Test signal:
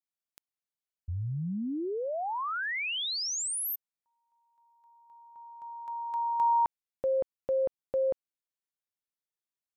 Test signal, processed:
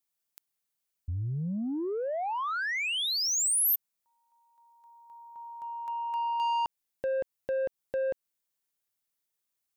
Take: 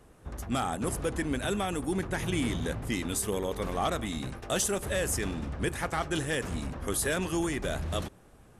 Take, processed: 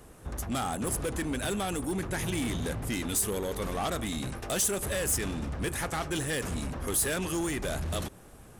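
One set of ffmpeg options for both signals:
-filter_complex "[0:a]asplit=2[a][b];[b]acompressor=threshold=-39dB:ratio=6:release=300:detection=peak,volume=-3dB[c];[a][c]amix=inputs=2:normalize=0,asoftclip=type=tanh:threshold=-26dB,highshelf=f=7.2k:g=8.5"

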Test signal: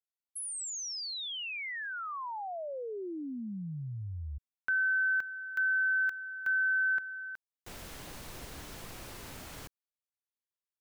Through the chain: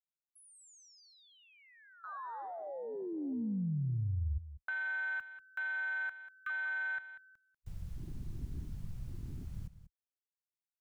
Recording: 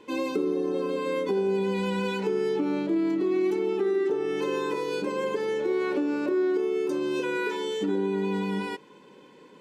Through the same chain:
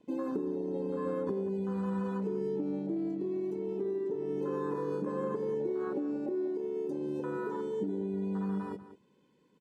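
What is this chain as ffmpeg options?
-filter_complex "[0:a]bass=f=250:g=13,treble=f=4k:g=5,acrossover=split=730|1700|5900[a][b][c][d];[a]acompressor=threshold=-28dB:ratio=8[e];[b]acompressor=threshold=-34dB:ratio=2.5[f];[c]acompressor=threshold=-51dB:ratio=2.5[g];[d]acompressor=threshold=-54dB:ratio=1.5[h];[e][f][g][h]amix=inputs=4:normalize=0,afwtdn=0.0251,asplit=2[i][j];[j]aecho=0:1:191:0.211[k];[i][k]amix=inputs=2:normalize=0,volume=-4dB"

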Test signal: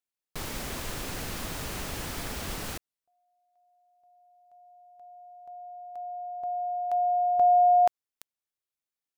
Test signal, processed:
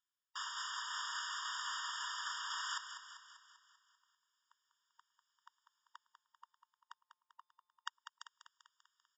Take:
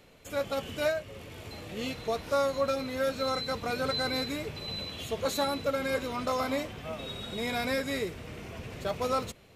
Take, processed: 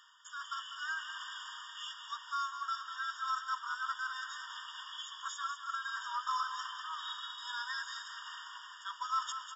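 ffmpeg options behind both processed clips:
-af "lowshelf=f=370:g=11.5,areverse,acompressor=threshold=-34dB:ratio=20:attack=0.35:release=753:knee=1:detection=rms,areverse,aecho=1:1:196|392|588|784|980|1176|1372:0.335|0.188|0.105|0.0588|0.0329|0.0184|0.0103,aresample=16000,aresample=44100,afftfilt=real='re*eq(mod(floor(b*sr/1024/940),2),1)':imag='im*eq(mod(floor(b*sr/1024/940),2),1)':win_size=1024:overlap=0.75,volume=14.5dB"

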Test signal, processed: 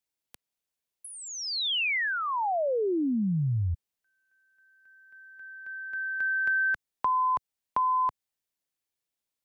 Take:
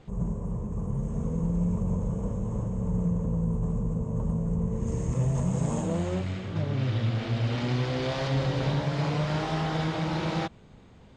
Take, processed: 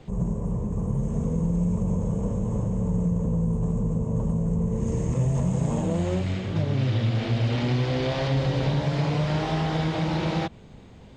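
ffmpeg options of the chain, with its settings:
-filter_complex "[0:a]acrossover=split=110|4300[a][b][c];[a]acompressor=threshold=-34dB:ratio=4[d];[b]acompressor=threshold=-28dB:ratio=4[e];[c]acompressor=threshold=-54dB:ratio=4[f];[d][e][f]amix=inputs=3:normalize=0,equalizer=f=1.3k:w=1.8:g=-4,volume=5.5dB"

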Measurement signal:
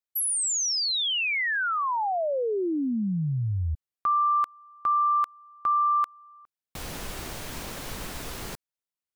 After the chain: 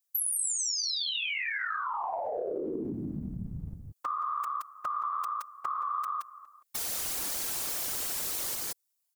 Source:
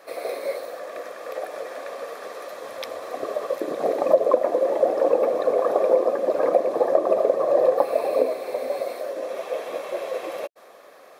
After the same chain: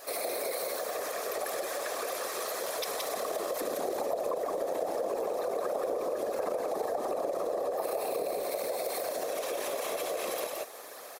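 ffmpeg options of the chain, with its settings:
-af "bass=f=250:g=-12,treble=f=4k:g=9,aecho=1:1:171:0.531,afftfilt=real='hypot(re,im)*cos(2*PI*random(0))':imag='hypot(re,im)*sin(2*PI*random(1))':win_size=512:overlap=0.75,highshelf=f=6.8k:g=6.5,acompressor=threshold=-41dB:ratio=5:attack=16:release=32:knee=1:detection=peak,volume=6dB"

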